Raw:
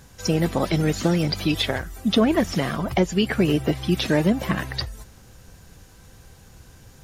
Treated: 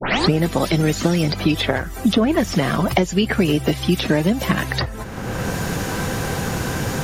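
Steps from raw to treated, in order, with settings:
turntable start at the beginning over 0.33 s
multiband upward and downward compressor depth 100%
level +3 dB

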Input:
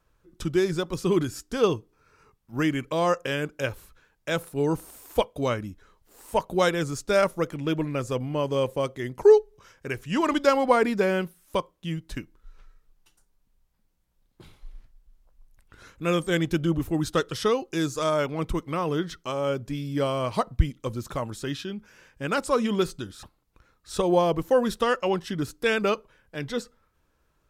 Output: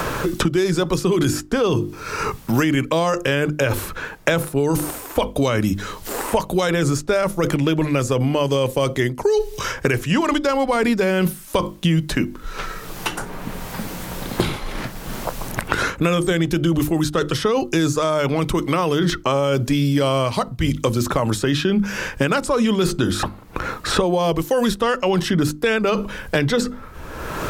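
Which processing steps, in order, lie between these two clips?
mains-hum notches 50/100/150/200/250/300/350 Hz
reversed playback
downward compressor 6 to 1, threshold −36 dBFS, peak gain reduction 22.5 dB
reversed playback
boost into a limiter +31.5 dB
multiband upward and downward compressor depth 100%
level −9.5 dB

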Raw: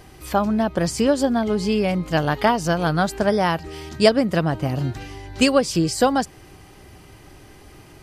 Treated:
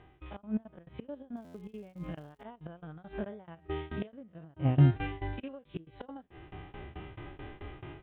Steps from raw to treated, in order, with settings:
spectrum averaged block by block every 50 ms
downsampling to 8,000 Hz
gate with flip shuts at −14 dBFS, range −27 dB
dynamic equaliser 2,800 Hz, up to +4 dB, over −43 dBFS, Q 1.4
automatic gain control gain up to 16 dB
high-frequency loss of the air 140 metres
0:01.35–0:02.42: surface crackle 250 per second −41 dBFS
shaped tremolo saw down 4.6 Hz, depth 100%
harmonic and percussive parts rebalanced percussive −11 dB
buffer that repeats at 0:01.44, samples 512, times 8
level −5 dB

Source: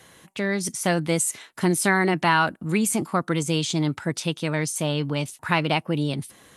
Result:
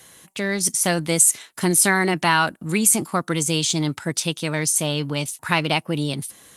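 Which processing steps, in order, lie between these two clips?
high-shelf EQ 4,500 Hz +11.5 dB
in parallel at −11 dB: dead-zone distortion −36.5 dBFS
on the sum: level −1.5 dB

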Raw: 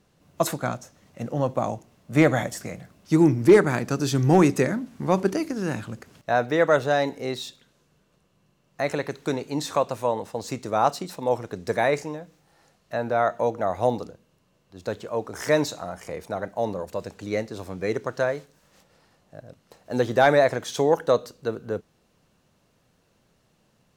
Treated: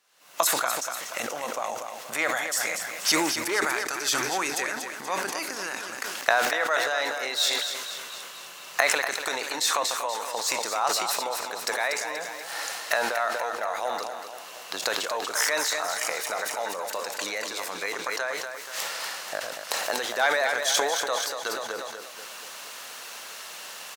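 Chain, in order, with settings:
camcorder AGC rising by 53 dB per second
high-pass filter 1,100 Hz 12 dB per octave
high-shelf EQ 8,300 Hz +3.5 dB
repeating echo 240 ms, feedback 56%, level −8 dB
level that may fall only so fast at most 32 dB per second

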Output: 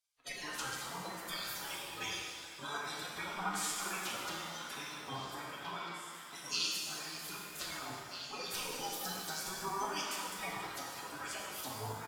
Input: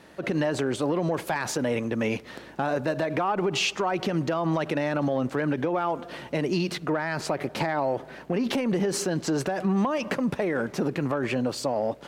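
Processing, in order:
noise reduction from a noise print of the clip's start 28 dB
comb filter 5.4 ms, depth 73%
gate on every frequency bin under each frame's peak −25 dB weak
on a send: echo through a band-pass that steps 796 ms, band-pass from 1,400 Hz, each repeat 1.4 octaves, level −7 dB
on the sum: reverb with rising layers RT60 1.7 s, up +7 semitones, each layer −8 dB, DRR −2 dB
level +4 dB

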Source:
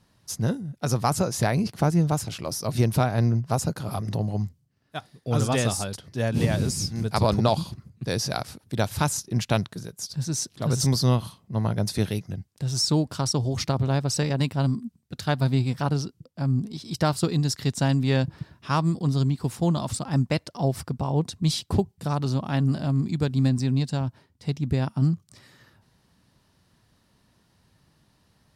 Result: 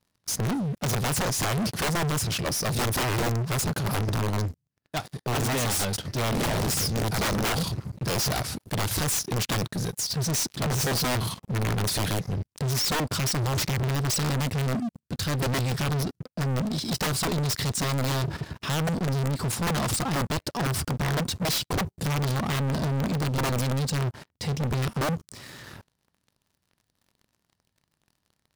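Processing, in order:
output level in coarse steps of 10 dB
wrap-around overflow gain 24 dB
leveller curve on the samples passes 5

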